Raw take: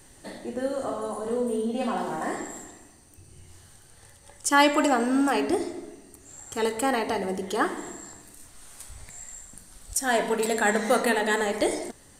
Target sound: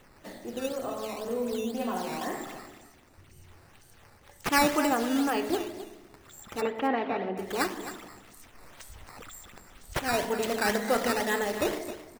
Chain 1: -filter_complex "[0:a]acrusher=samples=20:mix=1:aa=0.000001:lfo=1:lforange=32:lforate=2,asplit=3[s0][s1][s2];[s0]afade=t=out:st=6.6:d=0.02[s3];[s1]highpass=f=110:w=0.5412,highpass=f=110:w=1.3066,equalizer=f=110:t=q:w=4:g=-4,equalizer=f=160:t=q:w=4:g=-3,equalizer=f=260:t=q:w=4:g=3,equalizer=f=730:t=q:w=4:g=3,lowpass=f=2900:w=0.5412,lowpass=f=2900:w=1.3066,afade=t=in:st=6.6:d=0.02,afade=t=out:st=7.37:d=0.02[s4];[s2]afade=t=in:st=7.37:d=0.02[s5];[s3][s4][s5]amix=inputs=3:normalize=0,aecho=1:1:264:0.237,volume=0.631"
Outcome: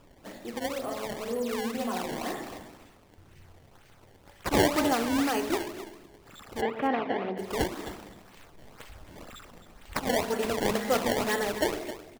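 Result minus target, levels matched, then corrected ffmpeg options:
decimation with a swept rate: distortion +7 dB
-filter_complex "[0:a]acrusher=samples=8:mix=1:aa=0.000001:lfo=1:lforange=12.8:lforate=2,asplit=3[s0][s1][s2];[s0]afade=t=out:st=6.6:d=0.02[s3];[s1]highpass=f=110:w=0.5412,highpass=f=110:w=1.3066,equalizer=f=110:t=q:w=4:g=-4,equalizer=f=160:t=q:w=4:g=-3,equalizer=f=260:t=q:w=4:g=3,equalizer=f=730:t=q:w=4:g=3,lowpass=f=2900:w=0.5412,lowpass=f=2900:w=1.3066,afade=t=in:st=6.6:d=0.02,afade=t=out:st=7.37:d=0.02[s4];[s2]afade=t=in:st=7.37:d=0.02[s5];[s3][s4][s5]amix=inputs=3:normalize=0,aecho=1:1:264:0.237,volume=0.631"

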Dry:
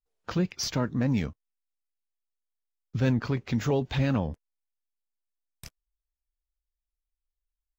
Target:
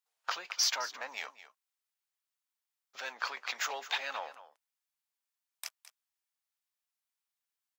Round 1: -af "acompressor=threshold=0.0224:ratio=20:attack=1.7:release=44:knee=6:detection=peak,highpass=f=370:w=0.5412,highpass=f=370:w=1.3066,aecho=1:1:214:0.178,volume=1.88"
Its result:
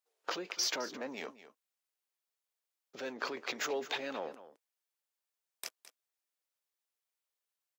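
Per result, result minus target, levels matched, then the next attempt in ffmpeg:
500 Hz band +10.5 dB; compression: peak gain reduction +6 dB
-af "acompressor=threshold=0.0224:ratio=20:attack=1.7:release=44:knee=6:detection=peak,highpass=f=770:w=0.5412,highpass=f=770:w=1.3066,aecho=1:1:214:0.178,volume=1.88"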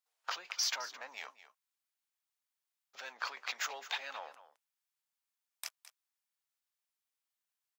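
compression: peak gain reduction +6 dB
-af "acompressor=threshold=0.0473:ratio=20:attack=1.7:release=44:knee=6:detection=peak,highpass=f=770:w=0.5412,highpass=f=770:w=1.3066,aecho=1:1:214:0.178,volume=1.88"

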